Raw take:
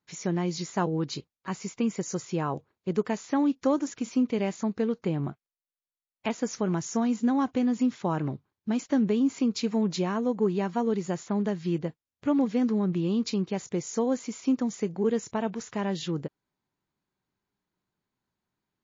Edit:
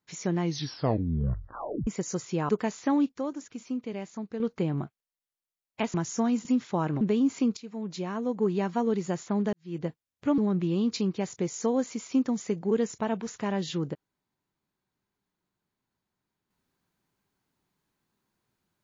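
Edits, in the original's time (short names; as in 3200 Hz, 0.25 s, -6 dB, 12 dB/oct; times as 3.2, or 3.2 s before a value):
0.4 tape stop 1.47 s
2.49–2.95 cut
3.58–4.86 gain -8 dB
6.4–6.71 cut
7.22–7.76 cut
8.32–9.01 cut
9.57–10.58 fade in, from -18 dB
11.53–11.84 fade in quadratic
12.38–12.71 cut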